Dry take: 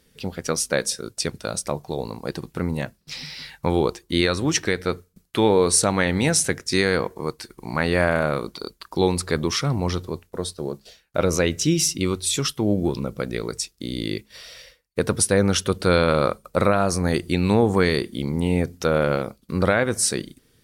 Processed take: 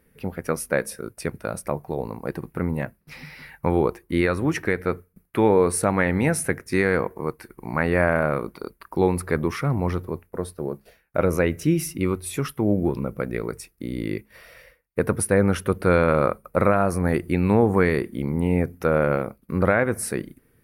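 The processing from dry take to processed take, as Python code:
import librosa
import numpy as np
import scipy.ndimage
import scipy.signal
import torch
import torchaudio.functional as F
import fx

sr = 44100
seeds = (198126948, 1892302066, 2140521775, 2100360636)

y = fx.band_shelf(x, sr, hz=5000.0, db=-16.0, octaves=1.7)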